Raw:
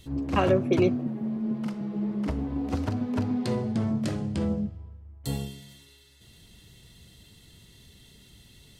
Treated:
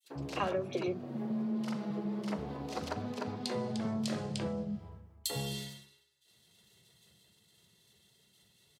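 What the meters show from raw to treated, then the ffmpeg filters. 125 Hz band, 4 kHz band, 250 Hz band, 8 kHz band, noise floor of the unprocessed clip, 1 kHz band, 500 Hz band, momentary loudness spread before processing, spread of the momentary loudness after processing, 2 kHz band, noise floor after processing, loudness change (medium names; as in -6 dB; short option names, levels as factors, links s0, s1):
-10.5 dB, +0.5 dB, -9.0 dB, +2.0 dB, -55 dBFS, -5.5 dB, -8.5 dB, 12 LU, 6 LU, -5.5 dB, -69 dBFS, -8.5 dB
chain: -filter_complex "[0:a]adynamicequalizer=threshold=0.00178:dfrequency=4200:dqfactor=1:tfrequency=4200:tqfactor=1:attack=5:release=100:ratio=0.375:range=2.5:mode=boostabove:tftype=bell,agate=range=0.0224:threshold=0.00891:ratio=3:detection=peak,highpass=190,acompressor=threshold=0.0126:ratio=6,equalizer=f=270:t=o:w=0.23:g=-13.5,acrossover=split=280|2500[s0][s1][s2];[s1]adelay=40[s3];[s0]adelay=90[s4];[s4][s3][s2]amix=inputs=3:normalize=0,volume=2.51"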